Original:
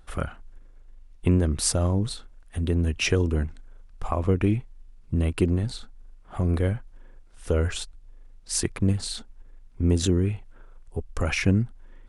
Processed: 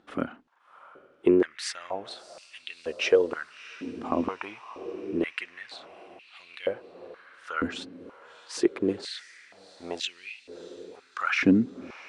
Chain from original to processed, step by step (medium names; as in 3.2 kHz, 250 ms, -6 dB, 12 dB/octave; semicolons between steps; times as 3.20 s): low-pass 4.2 kHz 12 dB/octave; echo that smears into a reverb 666 ms, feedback 59%, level -16 dB; step-sequenced high-pass 2.1 Hz 260–2600 Hz; trim -2 dB